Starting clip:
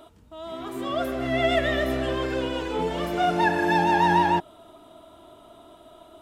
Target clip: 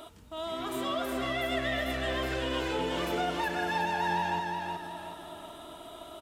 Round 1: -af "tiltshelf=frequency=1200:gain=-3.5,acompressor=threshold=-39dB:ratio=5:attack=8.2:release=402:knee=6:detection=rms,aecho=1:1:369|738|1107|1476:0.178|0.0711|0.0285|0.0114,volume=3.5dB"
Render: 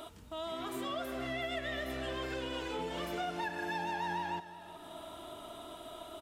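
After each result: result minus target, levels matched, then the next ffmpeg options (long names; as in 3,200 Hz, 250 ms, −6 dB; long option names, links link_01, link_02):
echo-to-direct −11 dB; downward compressor: peak gain reduction +5 dB
-af "tiltshelf=frequency=1200:gain=-3.5,acompressor=threshold=-39dB:ratio=5:attack=8.2:release=402:knee=6:detection=rms,aecho=1:1:369|738|1107|1476|1845:0.631|0.252|0.101|0.0404|0.0162,volume=3.5dB"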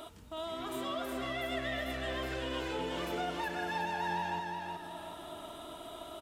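downward compressor: peak gain reduction +5 dB
-af "tiltshelf=frequency=1200:gain=-3.5,acompressor=threshold=-32.5dB:ratio=5:attack=8.2:release=402:knee=6:detection=rms,aecho=1:1:369|738|1107|1476|1845:0.631|0.252|0.101|0.0404|0.0162,volume=3.5dB"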